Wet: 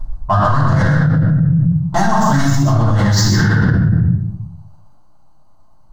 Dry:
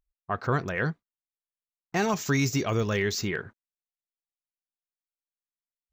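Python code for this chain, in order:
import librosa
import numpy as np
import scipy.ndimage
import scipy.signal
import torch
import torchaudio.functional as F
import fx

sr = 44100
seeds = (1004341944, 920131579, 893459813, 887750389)

p1 = fx.wiener(x, sr, points=25)
p2 = fx.high_shelf(p1, sr, hz=9100.0, db=-8.5)
p3 = fx.level_steps(p2, sr, step_db=12)
p4 = p2 + (p3 * 10.0 ** (1.5 / 20.0))
p5 = 10.0 ** (-20.0 / 20.0) * np.tanh(p4 / 10.0 ** (-20.0 / 20.0))
p6 = fx.fixed_phaser(p5, sr, hz=1000.0, stages=4)
p7 = p6 + fx.echo_single(p6, sr, ms=121, db=-4.5, dry=0)
p8 = fx.room_shoebox(p7, sr, seeds[0], volume_m3=150.0, walls='mixed', distance_m=4.9)
p9 = fx.env_flatten(p8, sr, amount_pct=100)
y = p9 * 10.0 ** (-6.5 / 20.0)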